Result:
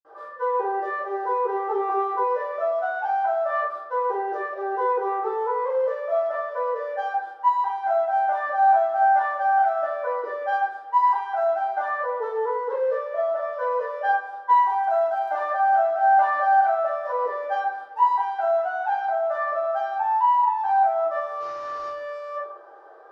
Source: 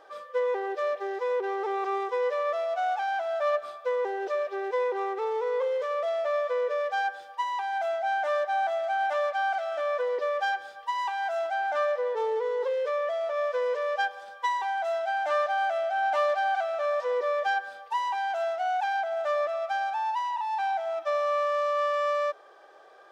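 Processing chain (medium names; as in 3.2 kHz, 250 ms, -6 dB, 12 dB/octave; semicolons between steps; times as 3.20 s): 21.35–21.83 s: CVSD coder 32 kbps; high-order bell 670 Hz +15 dB 2.8 oct; reverberation RT60 0.55 s, pre-delay 46 ms; 14.77–15.34 s: crackle 95 per s -42 dBFS; trim -5 dB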